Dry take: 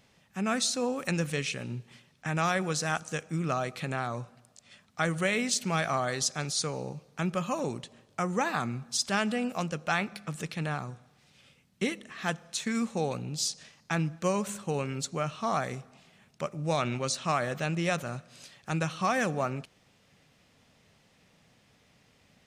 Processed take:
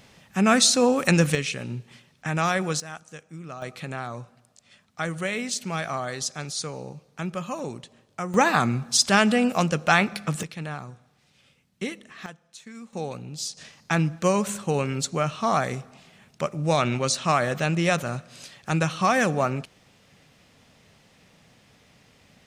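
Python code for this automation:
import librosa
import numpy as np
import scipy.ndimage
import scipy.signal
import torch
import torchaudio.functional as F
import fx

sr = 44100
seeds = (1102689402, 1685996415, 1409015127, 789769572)

y = fx.gain(x, sr, db=fx.steps((0.0, 10.5), (1.35, 4.0), (2.8, -8.5), (3.62, -0.5), (8.34, 9.5), (10.43, -1.0), (12.26, -12.0), (12.93, -1.5), (13.57, 6.5)))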